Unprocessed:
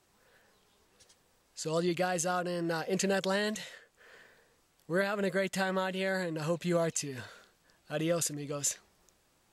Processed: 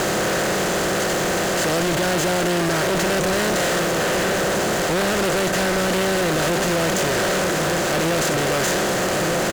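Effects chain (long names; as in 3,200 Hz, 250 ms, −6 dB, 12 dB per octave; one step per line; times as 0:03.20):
compressor on every frequency bin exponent 0.2
low-pass filter 6,400 Hz 12 dB per octave
slap from a distant wall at 210 metres, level −9 dB
in parallel at −7.5 dB: slack as between gear wheels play −21.5 dBFS
0:01.83–0:03.03: on the sum: notch comb filter 250 Hz
fuzz pedal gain 36 dB, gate −38 dBFS
level −5.5 dB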